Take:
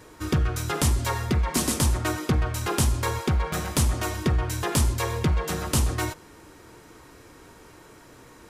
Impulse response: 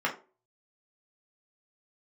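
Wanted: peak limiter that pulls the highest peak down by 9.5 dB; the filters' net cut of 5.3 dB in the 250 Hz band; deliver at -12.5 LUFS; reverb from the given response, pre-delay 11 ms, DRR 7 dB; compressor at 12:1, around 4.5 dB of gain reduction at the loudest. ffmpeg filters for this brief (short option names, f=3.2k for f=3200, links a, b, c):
-filter_complex "[0:a]equalizer=f=250:t=o:g=-8,acompressor=threshold=-23dB:ratio=12,alimiter=limit=-21dB:level=0:latency=1,asplit=2[a][b];[1:a]atrim=start_sample=2205,adelay=11[c];[b][c]afir=irnorm=-1:irlink=0,volume=-17.5dB[d];[a][d]amix=inputs=2:normalize=0,volume=18.5dB"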